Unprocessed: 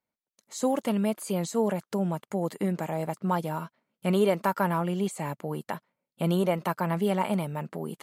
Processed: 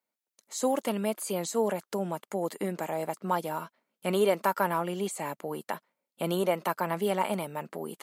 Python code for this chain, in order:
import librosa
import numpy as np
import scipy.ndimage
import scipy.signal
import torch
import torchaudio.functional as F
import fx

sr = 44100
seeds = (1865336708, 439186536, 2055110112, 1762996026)

y = scipy.signal.sosfilt(scipy.signal.butter(2, 270.0, 'highpass', fs=sr, output='sos'), x)
y = fx.high_shelf(y, sr, hz=6400.0, db=4.0)